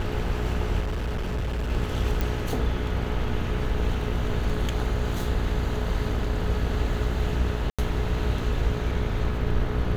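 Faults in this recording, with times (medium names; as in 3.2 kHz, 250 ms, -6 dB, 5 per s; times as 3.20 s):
buzz 60 Hz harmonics 29 -30 dBFS
0.80–1.71 s: clipped -24.5 dBFS
2.21 s: pop
7.70–7.79 s: dropout 86 ms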